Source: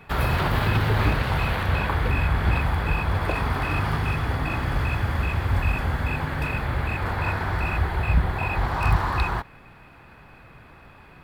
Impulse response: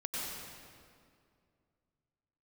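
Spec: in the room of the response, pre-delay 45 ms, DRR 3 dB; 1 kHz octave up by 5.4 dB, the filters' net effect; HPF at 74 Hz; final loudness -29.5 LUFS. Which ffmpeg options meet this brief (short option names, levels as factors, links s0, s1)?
-filter_complex "[0:a]highpass=74,equalizer=f=1000:t=o:g=6.5,asplit=2[s0][s1];[1:a]atrim=start_sample=2205,adelay=45[s2];[s1][s2]afir=irnorm=-1:irlink=0,volume=0.473[s3];[s0][s3]amix=inputs=2:normalize=0,volume=0.422"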